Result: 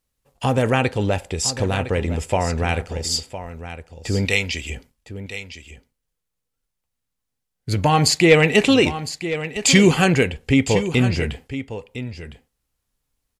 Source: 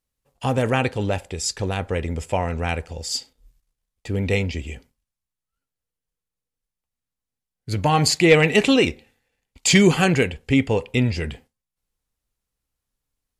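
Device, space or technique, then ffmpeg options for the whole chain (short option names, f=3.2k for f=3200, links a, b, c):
parallel compression: -filter_complex "[0:a]asplit=2[a][b];[b]acompressor=threshold=-27dB:ratio=6,volume=-2dB[c];[a][c]amix=inputs=2:normalize=0,asettb=1/sr,asplit=3[d][e][f];[d]atrim=end=4.254[g];[e]atrim=start=4.25:end=4.7,asetpts=PTS-STARTPTS,afade=t=in:d=0.004:c=qsin,afade=t=out:st=0.446:d=0.004:c=qsin,tiltshelf=f=1.1k:g=-8[h];[f]atrim=start=4.696[i];[g][h]acrossfade=d=0.004:c1=hsin:c2=qsin[j];[j][i]acrossfade=d=0.004:c1=qsin:c2=hsin,aecho=1:1:1009:0.251"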